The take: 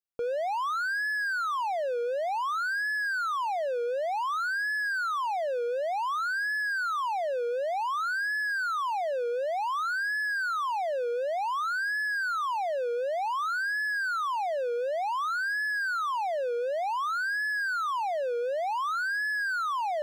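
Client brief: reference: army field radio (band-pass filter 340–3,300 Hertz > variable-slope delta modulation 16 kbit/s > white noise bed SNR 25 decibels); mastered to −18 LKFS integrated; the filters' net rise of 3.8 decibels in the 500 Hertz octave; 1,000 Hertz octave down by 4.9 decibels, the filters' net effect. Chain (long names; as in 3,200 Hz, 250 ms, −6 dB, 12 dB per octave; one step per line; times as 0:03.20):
band-pass filter 340–3,300 Hz
parametric band 500 Hz +7.5 dB
parametric band 1,000 Hz −9 dB
variable-slope delta modulation 16 kbit/s
white noise bed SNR 25 dB
level +12 dB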